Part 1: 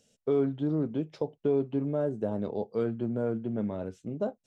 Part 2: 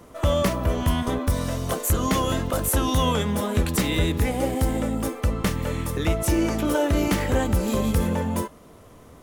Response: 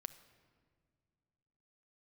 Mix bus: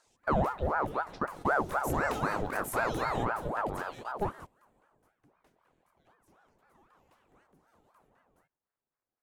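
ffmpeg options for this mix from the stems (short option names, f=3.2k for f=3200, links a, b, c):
-filter_complex "[0:a]volume=1dB,asplit=2[a][b];[1:a]aeval=exprs='sgn(val(0))*max(abs(val(0))-0.00158,0)':c=same,equalizer=f=610:w=1.5:g=4,volume=-13dB,afade=t=in:st=1.23:d=0.69:silence=0.334965,afade=t=out:st=3.04:d=0.55:silence=0.334965[c];[b]apad=whole_len=406866[d];[c][d]sidechaingate=range=-20dB:threshold=-49dB:ratio=16:detection=peak[e];[a][e]amix=inputs=2:normalize=0,equalizer=f=1.5k:w=1.5:g=3,aeval=exprs='val(0)*sin(2*PI*680*n/s+680*0.7/3.9*sin(2*PI*3.9*n/s))':c=same"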